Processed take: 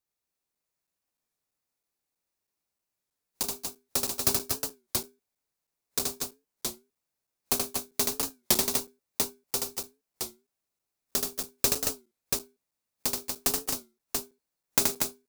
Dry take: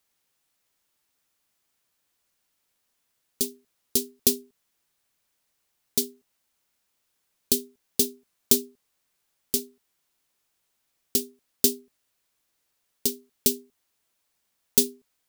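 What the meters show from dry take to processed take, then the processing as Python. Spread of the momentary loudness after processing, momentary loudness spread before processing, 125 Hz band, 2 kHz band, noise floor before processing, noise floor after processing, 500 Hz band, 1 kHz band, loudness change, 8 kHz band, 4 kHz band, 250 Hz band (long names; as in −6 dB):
11 LU, 8 LU, +3.0 dB, +10.0 dB, −76 dBFS, below −85 dBFS, −3.5 dB, can't be measured, −4.0 dB, −1.0 dB, −0.5 dB, −6.0 dB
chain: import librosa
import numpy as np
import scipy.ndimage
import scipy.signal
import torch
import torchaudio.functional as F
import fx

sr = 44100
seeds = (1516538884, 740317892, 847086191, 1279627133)

p1 = fx.self_delay(x, sr, depth_ms=0.059)
p2 = fx.noise_reduce_blind(p1, sr, reduce_db=14)
p3 = fx.highpass(p2, sr, hz=1000.0, slope=6)
p4 = fx.peak_eq(p3, sr, hz=3100.0, db=-8.0, octaves=0.24)
p5 = fx.sample_hold(p4, sr, seeds[0], rate_hz=1900.0, jitter_pct=0)
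p6 = p4 + (p5 * 10.0 ** (-9.5 / 20.0))
p7 = fx.echo_multitap(p6, sr, ms=(77, 120, 227, 238, 684), db=(-3.5, -19.5, -17.5, -5.0, -4.0))
p8 = fx.buffer_crackle(p7, sr, first_s=0.55, period_s=0.32, block=256, kind='zero')
y = fx.record_warp(p8, sr, rpm=33.33, depth_cents=160.0)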